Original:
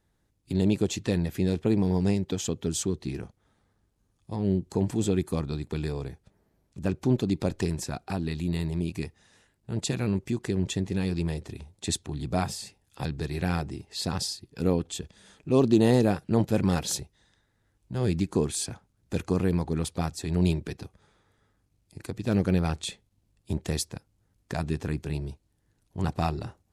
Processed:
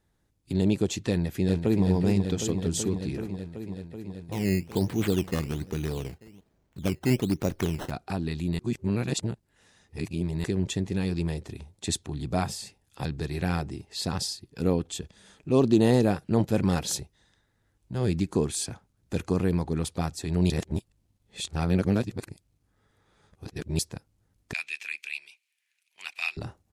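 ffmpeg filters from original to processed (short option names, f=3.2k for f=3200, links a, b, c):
-filter_complex "[0:a]asplit=2[a][b];[b]afade=t=in:st=1.1:d=0.01,afade=t=out:st=1.84:d=0.01,aecho=0:1:380|760|1140|1520|1900|2280|2660|3040|3420|3800|4180|4560:0.473151|0.378521|0.302817|0.242253|0.193803|0.155042|0.124034|0.099227|0.0793816|0.0635053|0.0508042|0.0406434[c];[a][c]amix=inputs=2:normalize=0,asettb=1/sr,asplit=3[d][e][f];[d]atrim=end=4.324[g];[e]atrim=start=4.32:end=7.91,asetpts=PTS-STARTPTS,afade=t=in:d=0.004:c=qsin,afade=t=out:st=3.586:d=0.004:c=qsin,acrusher=samples=13:mix=1:aa=0.000001:lfo=1:lforange=13:lforate=1.2[h];[f]atrim=start=7.906[i];[g][h]acrossfade=d=0.004:c1=hsin:c2=qsin[j];[j][i]acrossfade=d=0.004:c1=qsin:c2=hsin,asettb=1/sr,asplit=3[k][l][m];[k]atrim=end=24.534[n];[l]atrim=start=24.53:end=26.37,asetpts=PTS-STARTPTS,afade=t=in:d=0.004:c=qsin,afade=t=out:st=1.836:d=0.004:c=qsin,highpass=f=2.4k:t=q:w=7.3[o];[m]atrim=start=26.366[p];[n][o]acrossfade=d=0.004:c1=hsin:c2=qsin[q];[q][p]acrossfade=d=0.004:c1=qsin:c2=hsin,asplit=5[r][s][t][u][v];[r]atrim=end=8.592[w];[s]atrim=start=8.588:end=10.442,asetpts=PTS-STARTPTS,areverse[x];[t]atrim=start=10.438:end=20.502[y];[u]atrim=start=20.498:end=23.792,asetpts=PTS-STARTPTS,areverse[z];[v]atrim=start=23.788[aa];[w][x]acrossfade=d=0.004:c1=hsin:c2=hsin[ab];[ab][y]acrossfade=d=0.004:c1=hsin:c2=hsin[ac];[ac][z]acrossfade=d=0.004:c1=hsin:c2=hsin[ad];[ad][aa]acrossfade=d=0.004:c1=hsin:c2=hsin"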